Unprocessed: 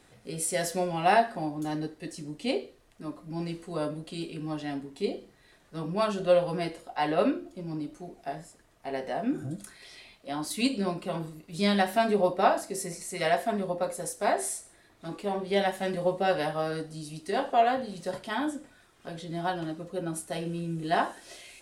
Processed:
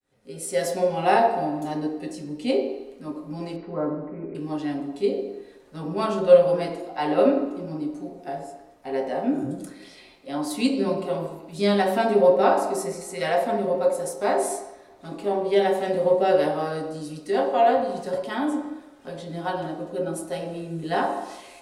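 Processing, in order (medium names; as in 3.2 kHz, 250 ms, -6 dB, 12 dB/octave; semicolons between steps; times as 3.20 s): fade-in on the opening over 0.63 s; 3.56–4.35 s: steep low-pass 2.2 kHz 96 dB/octave; on a send: resonant low shelf 200 Hz -13.5 dB, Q 1.5 + reverberation RT60 1.0 s, pre-delay 3 ms, DRR 0 dB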